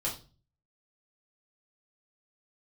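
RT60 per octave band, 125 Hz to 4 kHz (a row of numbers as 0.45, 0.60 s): 0.70, 0.50, 0.40, 0.30, 0.30, 0.35 s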